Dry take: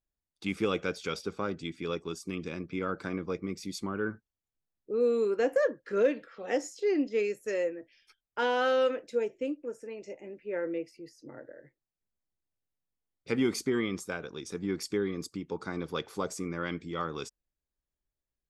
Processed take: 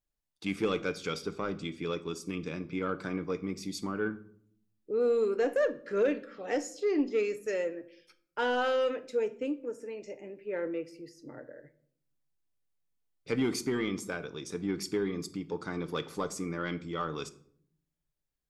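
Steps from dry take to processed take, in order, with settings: saturation -19.5 dBFS, distortion -20 dB; on a send: reverberation RT60 0.65 s, pre-delay 7 ms, DRR 11 dB

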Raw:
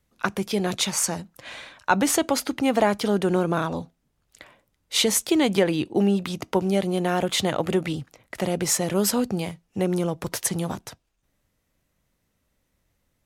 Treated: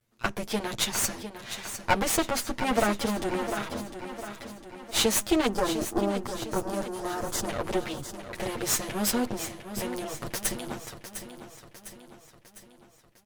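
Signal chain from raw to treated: comb filter that takes the minimum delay 8.7 ms; 5.47–7.49 s: high-order bell 2.9 kHz -13 dB 1.2 oct; feedback delay 704 ms, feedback 53%, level -10.5 dB; trim -1.5 dB

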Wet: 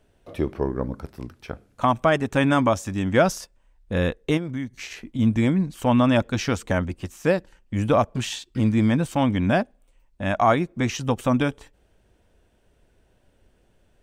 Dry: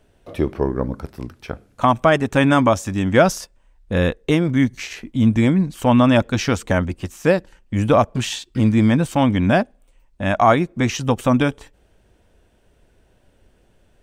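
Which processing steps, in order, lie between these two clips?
4.37–5.19 s: compression 6:1, threshold -22 dBFS, peak gain reduction 10.5 dB; trim -4.5 dB

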